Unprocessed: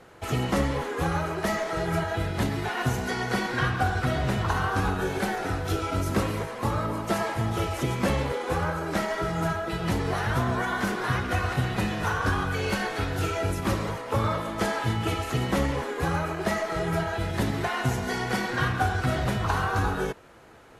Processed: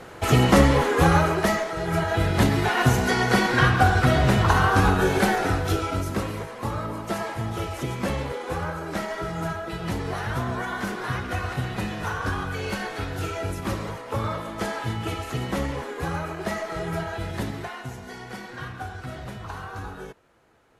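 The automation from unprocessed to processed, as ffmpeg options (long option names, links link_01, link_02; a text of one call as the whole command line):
ffmpeg -i in.wav -af "volume=17.5dB,afade=type=out:start_time=1.17:duration=0.58:silence=0.298538,afade=type=in:start_time=1.75:duration=0.59:silence=0.375837,afade=type=out:start_time=5.3:duration=0.83:silence=0.354813,afade=type=out:start_time=17.33:duration=0.51:silence=0.398107" out.wav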